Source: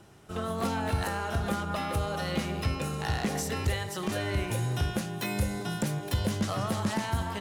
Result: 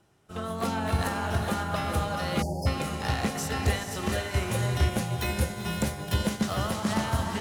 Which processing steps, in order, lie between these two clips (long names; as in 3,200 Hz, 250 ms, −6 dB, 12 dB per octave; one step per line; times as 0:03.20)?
mains-hum notches 50/100/150/200/250/300/350/400/450 Hz
feedback delay with all-pass diffusion 456 ms, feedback 41%, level −4.5 dB
time-frequency box erased 0:02.42–0:02.67, 980–4,400 Hz
expander for the loud parts 1.5 to 1, over −51 dBFS
level +4.5 dB